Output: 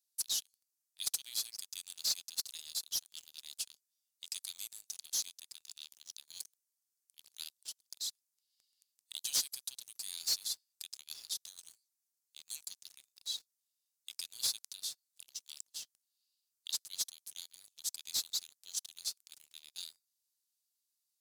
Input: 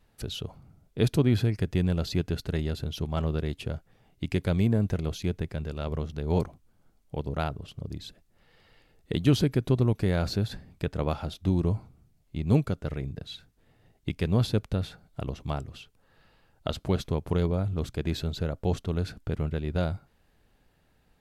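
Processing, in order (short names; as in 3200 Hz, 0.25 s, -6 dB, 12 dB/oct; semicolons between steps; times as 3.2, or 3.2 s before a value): inverse Chebyshev high-pass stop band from 920 Hz, stop band 80 dB; sample leveller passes 3; gain +3.5 dB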